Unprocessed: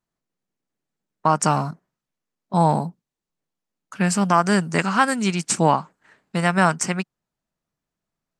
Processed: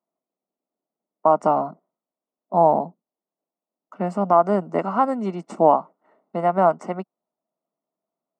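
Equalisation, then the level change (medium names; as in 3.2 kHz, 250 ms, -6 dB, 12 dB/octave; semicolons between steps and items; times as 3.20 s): Savitzky-Golay filter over 65 samples; high-pass 220 Hz 24 dB/octave; peaking EQ 650 Hz +8.5 dB 0.39 oct; 0.0 dB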